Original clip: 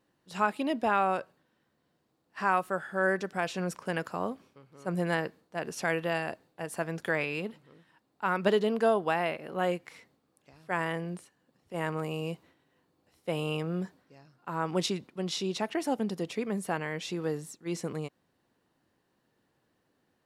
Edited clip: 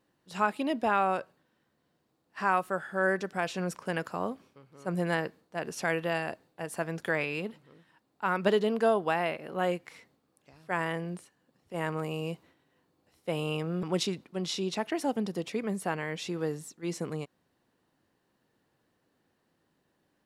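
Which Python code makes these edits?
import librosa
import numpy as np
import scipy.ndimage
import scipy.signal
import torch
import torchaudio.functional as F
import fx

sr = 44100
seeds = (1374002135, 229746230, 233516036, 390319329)

y = fx.edit(x, sr, fx.cut(start_s=13.83, length_s=0.83), tone=tone)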